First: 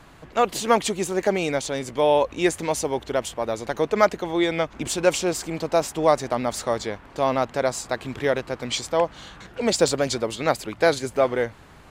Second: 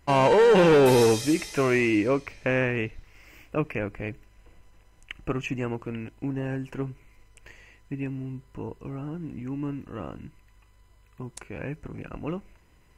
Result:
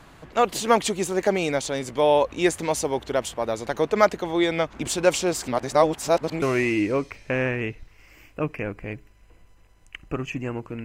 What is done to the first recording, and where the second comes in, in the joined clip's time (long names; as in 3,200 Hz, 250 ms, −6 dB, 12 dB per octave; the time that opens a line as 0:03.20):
first
0:05.48–0:06.42: reverse
0:06.42: continue with second from 0:01.58